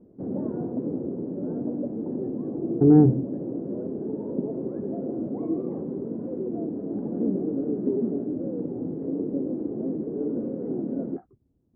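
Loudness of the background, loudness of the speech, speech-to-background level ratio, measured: −30.0 LKFS, −19.0 LKFS, 11.0 dB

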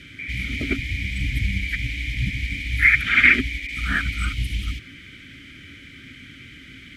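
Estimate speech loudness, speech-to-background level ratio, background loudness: −21.5 LKFS, 9.5 dB, −31.0 LKFS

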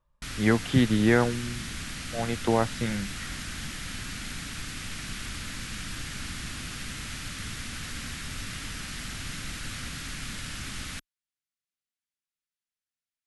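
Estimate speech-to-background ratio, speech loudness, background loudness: 10.0 dB, −26.0 LKFS, −36.0 LKFS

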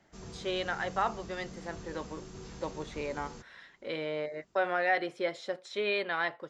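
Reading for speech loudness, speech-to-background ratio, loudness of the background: −34.0 LKFS, 13.0 dB, −47.0 LKFS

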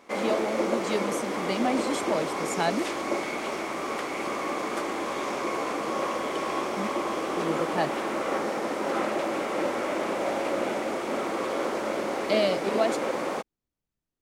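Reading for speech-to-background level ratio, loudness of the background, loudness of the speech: −1.0 dB, −29.5 LKFS, −30.5 LKFS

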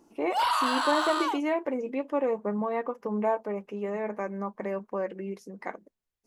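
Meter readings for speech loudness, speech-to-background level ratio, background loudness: −31.5 LKFS, −3.5 dB, −28.0 LKFS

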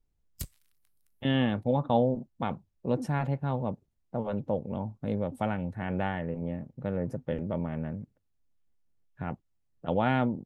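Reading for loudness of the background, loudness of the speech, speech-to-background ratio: −43.5 LKFS, −31.5 LKFS, 12.0 dB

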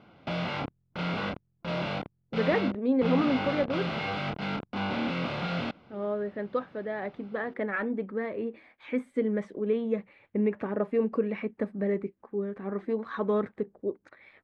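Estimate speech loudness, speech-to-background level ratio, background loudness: −31.0 LKFS, 2.0 dB, −33.0 LKFS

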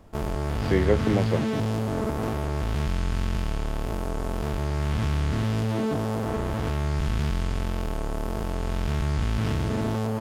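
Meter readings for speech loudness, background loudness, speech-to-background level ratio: −26.0 LKFS, −28.0 LKFS, 2.0 dB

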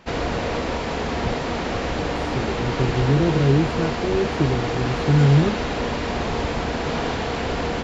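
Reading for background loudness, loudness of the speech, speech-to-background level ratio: −25.0 LKFS, −21.5 LKFS, 3.5 dB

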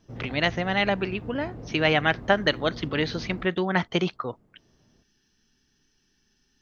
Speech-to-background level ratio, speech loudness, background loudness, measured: 14.5 dB, −26.0 LKFS, −40.5 LKFS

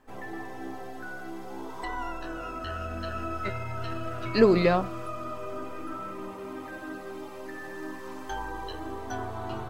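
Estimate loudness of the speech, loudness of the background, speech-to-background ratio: −23.0 LKFS, −37.0 LKFS, 14.0 dB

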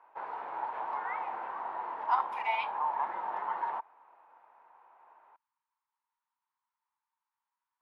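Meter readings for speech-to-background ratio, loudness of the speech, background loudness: 3.5 dB, −33.0 LKFS, −36.5 LKFS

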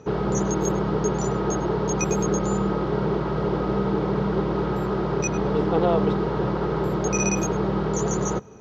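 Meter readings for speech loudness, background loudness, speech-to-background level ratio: −27.0 LKFS, −24.0 LKFS, −3.0 dB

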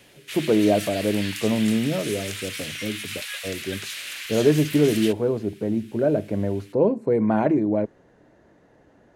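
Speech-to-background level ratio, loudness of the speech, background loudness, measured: 9.0 dB, −23.0 LKFS, −32.0 LKFS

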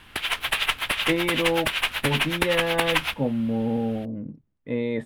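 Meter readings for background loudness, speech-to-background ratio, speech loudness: −24.5 LKFS, −3.0 dB, −27.5 LKFS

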